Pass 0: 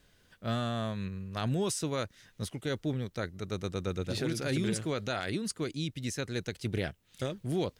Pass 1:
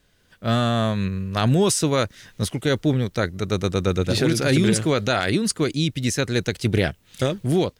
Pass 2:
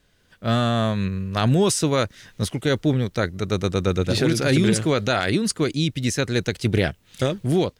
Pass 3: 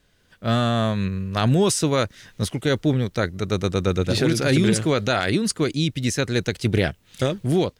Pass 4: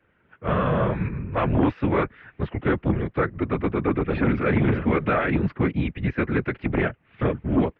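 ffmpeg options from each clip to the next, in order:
ffmpeg -i in.wav -af "dynaudnorm=framelen=270:gausssize=3:maxgain=11dB,volume=1.5dB" out.wav
ffmpeg -i in.wav -af "highshelf=frequency=9600:gain=-3.5" out.wav
ffmpeg -i in.wav -af anull out.wav
ffmpeg -i in.wav -af "afftfilt=real='hypot(re,im)*cos(2*PI*random(0))':imag='hypot(re,im)*sin(2*PI*random(1))':win_size=512:overlap=0.75,aeval=exprs='0.266*sin(PI/2*2*val(0)/0.266)':channel_layout=same,highpass=frequency=170:width_type=q:width=0.5412,highpass=frequency=170:width_type=q:width=1.307,lowpass=frequency=2500:width_type=q:width=0.5176,lowpass=frequency=2500:width_type=q:width=0.7071,lowpass=frequency=2500:width_type=q:width=1.932,afreqshift=-90,volume=-2dB" out.wav

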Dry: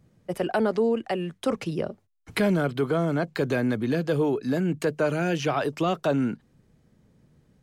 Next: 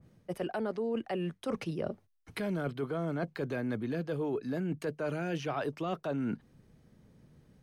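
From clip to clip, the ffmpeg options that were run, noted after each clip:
ffmpeg -i in.wav -af "bandreject=frequency=7300:width=8.3,areverse,acompressor=threshold=-31dB:ratio=6,areverse,adynamicequalizer=threshold=0.00224:dfrequency=2900:dqfactor=0.7:tfrequency=2900:tqfactor=0.7:attack=5:release=100:ratio=0.375:range=2:mode=cutabove:tftype=highshelf" out.wav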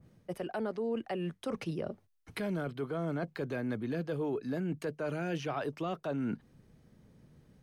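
ffmpeg -i in.wav -af "alimiter=level_in=1.5dB:limit=-24dB:level=0:latency=1:release=215,volume=-1.5dB" out.wav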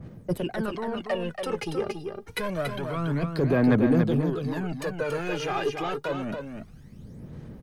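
ffmpeg -i in.wav -filter_complex "[0:a]asoftclip=type=tanh:threshold=-32dB,aphaser=in_gain=1:out_gain=1:delay=2.5:decay=0.7:speed=0.27:type=sinusoidal,asplit=2[link_01][link_02];[link_02]aecho=0:1:282:0.501[link_03];[link_01][link_03]amix=inputs=2:normalize=0,volume=7.5dB" out.wav

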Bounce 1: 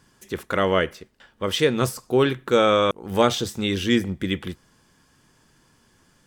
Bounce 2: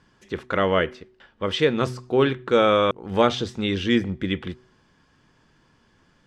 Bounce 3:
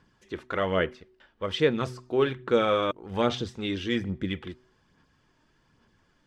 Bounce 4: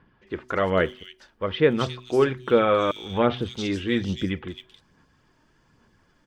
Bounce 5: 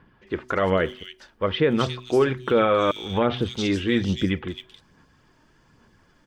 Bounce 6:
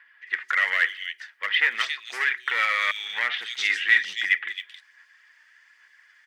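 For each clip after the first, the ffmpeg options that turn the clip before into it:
ffmpeg -i in.wav -af "lowpass=4100,bandreject=frequency=125:width_type=h:width=4,bandreject=frequency=250:width_type=h:width=4,bandreject=frequency=375:width_type=h:width=4" out.wav
ffmpeg -i in.wav -af "aphaser=in_gain=1:out_gain=1:delay=3.3:decay=0.36:speed=1.2:type=sinusoidal,volume=-6.5dB" out.wav
ffmpeg -i in.wav -filter_complex "[0:a]acrossover=split=3400[link_01][link_02];[link_02]adelay=270[link_03];[link_01][link_03]amix=inputs=2:normalize=0,volume=4dB" out.wav
ffmpeg -i in.wav -af "alimiter=limit=-14dB:level=0:latency=1:release=80,volume=3.5dB" out.wav
ffmpeg -i in.wav -af "aeval=exprs='clip(val(0),-1,0.126)':channel_layout=same,highpass=frequency=1900:width_type=q:width=7.2" out.wav

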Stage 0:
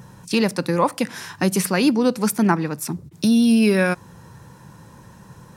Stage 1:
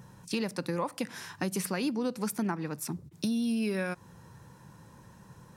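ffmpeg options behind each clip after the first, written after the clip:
ffmpeg -i in.wav -af "acompressor=threshold=-19dB:ratio=5,volume=-8.5dB" out.wav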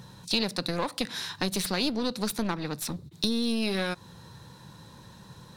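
ffmpeg -i in.wav -af "aeval=exprs='clip(val(0),-1,0.015)':channel_layout=same,equalizer=frequency=3900:width_type=o:width=0.5:gain=15,volume=3.5dB" out.wav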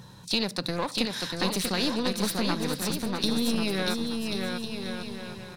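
ffmpeg -i in.wav -af "aecho=1:1:640|1088|1402|1621|1775:0.631|0.398|0.251|0.158|0.1" out.wav

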